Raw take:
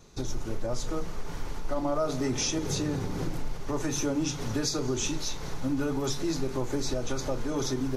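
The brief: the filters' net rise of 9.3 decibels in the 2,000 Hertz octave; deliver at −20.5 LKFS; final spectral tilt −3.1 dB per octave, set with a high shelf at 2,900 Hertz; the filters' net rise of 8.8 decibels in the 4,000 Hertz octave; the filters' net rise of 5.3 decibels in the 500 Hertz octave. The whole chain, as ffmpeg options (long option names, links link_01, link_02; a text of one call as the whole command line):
ffmpeg -i in.wav -af "equalizer=frequency=500:width_type=o:gain=6,equalizer=frequency=2000:width_type=o:gain=8.5,highshelf=frequency=2900:gain=5.5,equalizer=frequency=4000:width_type=o:gain=4.5,volume=6dB" out.wav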